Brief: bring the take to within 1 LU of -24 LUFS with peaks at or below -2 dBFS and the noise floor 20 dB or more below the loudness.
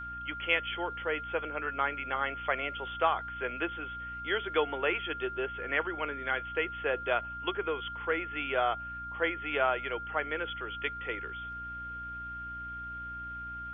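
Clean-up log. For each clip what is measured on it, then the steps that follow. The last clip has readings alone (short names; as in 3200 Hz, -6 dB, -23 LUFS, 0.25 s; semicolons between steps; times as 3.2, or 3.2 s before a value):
hum 60 Hz; harmonics up to 300 Hz; hum level -47 dBFS; steady tone 1400 Hz; tone level -38 dBFS; loudness -33.0 LUFS; peak -13.0 dBFS; loudness target -24.0 LUFS
-> notches 60/120/180/240/300 Hz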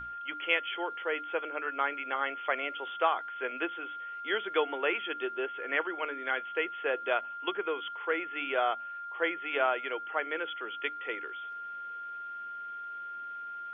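hum none; steady tone 1400 Hz; tone level -38 dBFS
-> notch 1400 Hz, Q 30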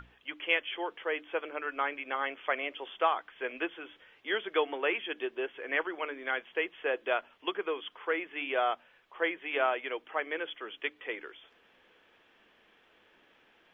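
steady tone none; loudness -33.5 LUFS; peak -13.5 dBFS; loudness target -24.0 LUFS
-> gain +9.5 dB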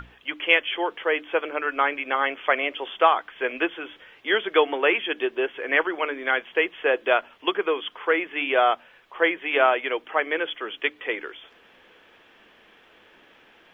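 loudness -24.0 LUFS; peak -4.0 dBFS; noise floor -56 dBFS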